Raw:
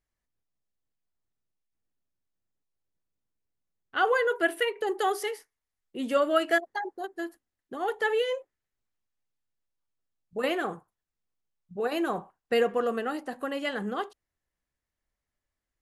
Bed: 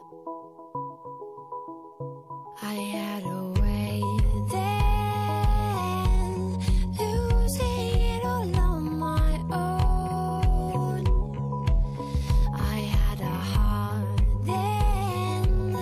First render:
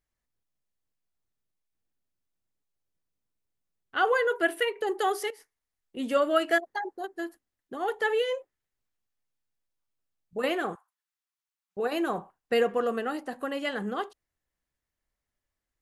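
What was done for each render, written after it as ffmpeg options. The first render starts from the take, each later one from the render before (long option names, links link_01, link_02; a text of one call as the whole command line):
ffmpeg -i in.wav -filter_complex "[0:a]asettb=1/sr,asplit=3[link_01][link_02][link_03];[link_01]atrim=end=5.304[link_04];[link_02]atrim=start=5.3:end=5.97,asetpts=PTS-STARTPTS,afade=type=in:duration=0.004:curve=qsin,afade=type=out:start_time=0.666:duration=0.004:curve=qsin,acompressor=threshold=-45dB:ratio=6:attack=3.2:release=140:knee=1:detection=peak[link_05];[link_03]atrim=start=5.966[link_06];[link_04][link_05]acrossfade=duration=0.004:curve1=hsin:curve2=qsin[link_07];[link_07][link_06]acrossfade=duration=0.004:curve1=qsin:curve2=hsin,asettb=1/sr,asplit=3[link_08][link_09][link_10];[link_08]atrim=end=10.754[link_11];[link_09]atrim=start=10.75:end=11.77,asetpts=PTS-STARTPTS,afade=type=in:duration=0.004:curve=qsin,afade=type=out:start_time=1.016:duration=0.004:curve=qsin,highpass=frequency=910:width=0.5412,highpass=frequency=910:width=1.3066[link_12];[link_10]atrim=start=11.766[link_13];[link_11][link_12]acrossfade=duration=0.004:curve1=hsin:curve2=qsin[link_14];[link_14][link_13]acrossfade=duration=0.004:curve1=qsin:curve2=hsin" out.wav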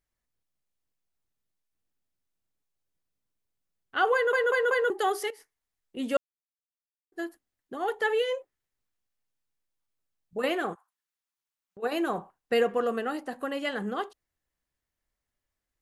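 ffmpeg -i in.wav -filter_complex "[0:a]asplit=3[link_01][link_02][link_03];[link_01]afade=type=out:start_time=10.73:duration=0.02[link_04];[link_02]acompressor=threshold=-45dB:ratio=6:attack=3.2:release=140:knee=1:detection=peak,afade=type=in:start_time=10.73:duration=0.02,afade=type=out:start_time=11.82:duration=0.02[link_05];[link_03]afade=type=in:start_time=11.82:duration=0.02[link_06];[link_04][link_05][link_06]amix=inputs=3:normalize=0,asplit=7[link_07][link_08][link_09][link_10][link_11][link_12][link_13];[link_07]atrim=end=4.332[link_14];[link_08]atrim=start=4.138:end=4.332[link_15];[link_09]atrim=start=4.138:end=4.332[link_16];[link_10]atrim=start=4.138:end=4.332[link_17];[link_11]atrim=start=4.898:end=6.17,asetpts=PTS-STARTPTS,afade=type=out:start_time=1.268:duration=0.004:curve=hsin[link_18];[link_12]atrim=start=6.17:end=7.12,asetpts=PTS-STARTPTS,volume=0[link_19];[link_13]atrim=start=7.12,asetpts=PTS-STARTPTS,afade=type=in:duration=0.004:curve=hsin[link_20];[link_14][link_15]acrossfade=duration=0.004:curve1=hsin:curve2=hsin[link_21];[link_21][link_16]acrossfade=duration=0.004:curve1=hsin:curve2=hsin[link_22];[link_22][link_17]acrossfade=duration=0.004:curve1=hsin:curve2=hsin[link_23];[link_18][link_19][link_20]concat=n=3:v=0:a=1[link_24];[link_23][link_24]acrossfade=duration=0.004:curve1=hsin:curve2=hsin" out.wav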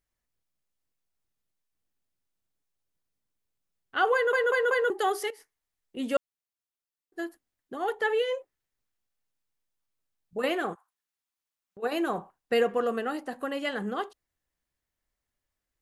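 ffmpeg -i in.wav -filter_complex "[0:a]asettb=1/sr,asplit=3[link_01][link_02][link_03];[link_01]atrim=end=7.924[link_04];[link_02]atrim=start=7.92:end=8.33,asetpts=PTS-STARTPTS,afade=type=in:duration=0.004:curve=qsin,afade=type=out:start_time=0.406:duration=0.004:curve=qsin,equalizer=frequency=10000:width=0.38:gain=-3.5[link_05];[link_03]atrim=start=8.326[link_06];[link_04][link_05]acrossfade=duration=0.004:curve1=hsin:curve2=qsin[link_07];[link_07][link_06]acrossfade=duration=0.004:curve1=qsin:curve2=hsin" out.wav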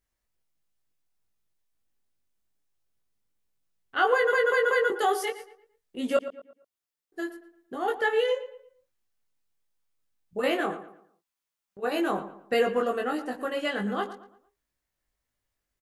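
ffmpeg -i in.wav -filter_complex "[0:a]asplit=2[link_01][link_02];[link_02]adelay=20,volume=-3dB[link_03];[link_01][link_03]amix=inputs=2:normalize=0,asplit=2[link_04][link_05];[link_05]adelay=114,lowpass=frequency=2700:poles=1,volume=-12.5dB,asplit=2[link_06][link_07];[link_07]adelay=114,lowpass=frequency=2700:poles=1,volume=0.37,asplit=2[link_08][link_09];[link_09]adelay=114,lowpass=frequency=2700:poles=1,volume=0.37,asplit=2[link_10][link_11];[link_11]adelay=114,lowpass=frequency=2700:poles=1,volume=0.37[link_12];[link_04][link_06][link_08][link_10][link_12]amix=inputs=5:normalize=0" out.wav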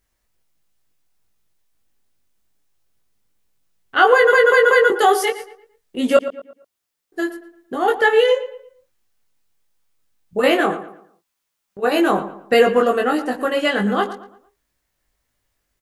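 ffmpeg -i in.wav -af "volume=10.5dB,alimiter=limit=-1dB:level=0:latency=1" out.wav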